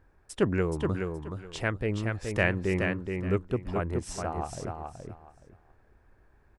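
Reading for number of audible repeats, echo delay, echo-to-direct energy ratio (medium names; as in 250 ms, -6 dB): 3, 423 ms, -5.0 dB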